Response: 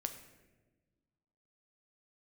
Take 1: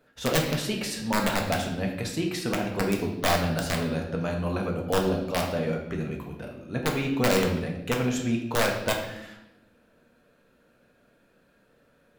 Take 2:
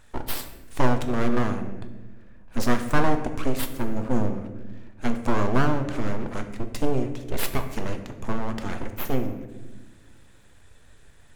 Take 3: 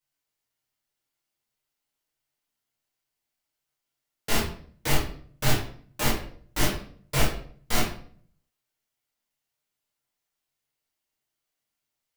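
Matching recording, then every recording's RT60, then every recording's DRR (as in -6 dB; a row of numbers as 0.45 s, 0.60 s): 2; 0.85 s, 1.3 s, 0.55 s; 0.5 dB, 6.5 dB, -7.0 dB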